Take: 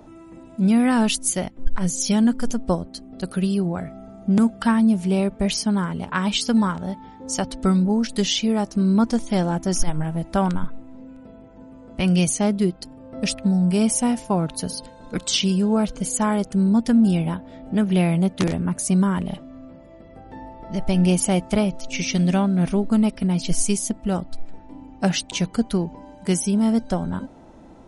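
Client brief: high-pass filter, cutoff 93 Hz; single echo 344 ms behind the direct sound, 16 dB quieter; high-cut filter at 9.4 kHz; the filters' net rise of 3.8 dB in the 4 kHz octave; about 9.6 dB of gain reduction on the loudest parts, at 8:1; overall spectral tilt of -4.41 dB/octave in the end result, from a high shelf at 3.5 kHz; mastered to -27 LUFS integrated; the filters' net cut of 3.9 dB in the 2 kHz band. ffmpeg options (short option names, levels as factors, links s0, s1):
-af "highpass=93,lowpass=9400,equalizer=f=2000:t=o:g=-9,highshelf=f=3500:g=6,equalizer=f=4000:t=o:g=4,acompressor=threshold=0.0631:ratio=8,aecho=1:1:344:0.158,volume=1.12"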